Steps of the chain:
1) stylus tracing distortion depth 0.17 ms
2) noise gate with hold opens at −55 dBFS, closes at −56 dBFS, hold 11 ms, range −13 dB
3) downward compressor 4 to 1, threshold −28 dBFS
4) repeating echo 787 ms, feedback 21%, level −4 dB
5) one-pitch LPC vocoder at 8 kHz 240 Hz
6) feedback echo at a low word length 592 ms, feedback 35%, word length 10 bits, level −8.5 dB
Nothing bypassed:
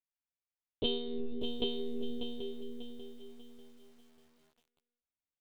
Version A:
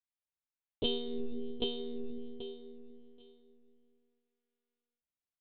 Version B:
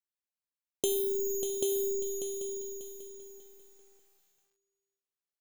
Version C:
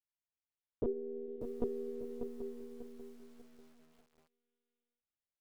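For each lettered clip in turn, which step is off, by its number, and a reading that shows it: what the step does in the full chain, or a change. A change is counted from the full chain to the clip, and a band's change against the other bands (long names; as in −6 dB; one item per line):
6, change in crest factor +1.5 dB
5, change in momentary loudness spread −2 LU
1, change in crest factor +1.5 dB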